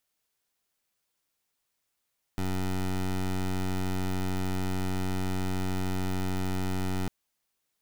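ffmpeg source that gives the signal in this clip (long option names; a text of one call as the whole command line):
ffmpeg -f lavfi -i "aevalsrc='0.0355*(2*lt(mod(93.5*t,1),0.17)-1)':duration=4.7:sample_rate=44100" out.wav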